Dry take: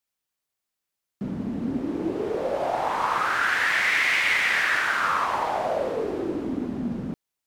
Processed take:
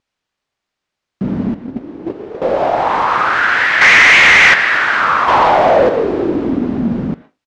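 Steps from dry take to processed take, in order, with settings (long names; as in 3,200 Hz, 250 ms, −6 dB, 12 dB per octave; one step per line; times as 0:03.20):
0:05.28–0:05.89: leveller curve on the samples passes 2
in parallel at +2 dB: brickwall limiter −18 dBFS, peak gain reduction 7 dB
on the sum: single-tap delay 79 ms −23 dB
0:01.54–0:02.42: noise gate −17 dBFS, range −14 dB
on a send at −10 dB: resonant band-pass 1,900 Hz, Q 0.97 + convolution reverb RT60 0.20 s, pre-delay 113 ms
0:03.81–0:04.54: on the sum: leveller curve on the samples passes 3
pitch vibrato 3.9 Hz 55 cents
high-frequency loss of the air 130 metres
level +5.5 dB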